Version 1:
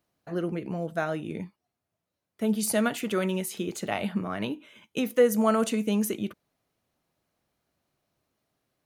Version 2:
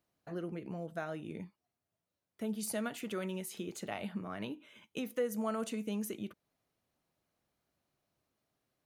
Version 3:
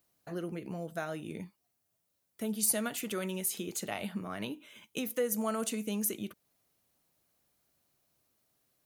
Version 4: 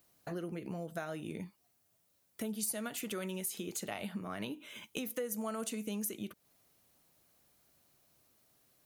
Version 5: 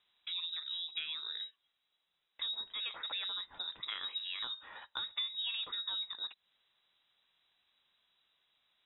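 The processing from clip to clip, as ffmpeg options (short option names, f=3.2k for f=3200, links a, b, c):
-af "acompressor=threshold=-40dB:ratio=1.5,volume=-5dB"
-af "crystalizer=i=2:c=0,volume=2dB"
-af "acompressor=threshold=-46dB:ratio=2.5,volume=5.5dB"
-af "lowpass=f=3.4k:t=q:w=0.5098,lowpass=f=3.4k:t=q:w=0.6013,lowpass=f=3.4k:t=q:w=0.9,lowpass=f=3.4k:t=q:w=2.563,afreqshift=-4000"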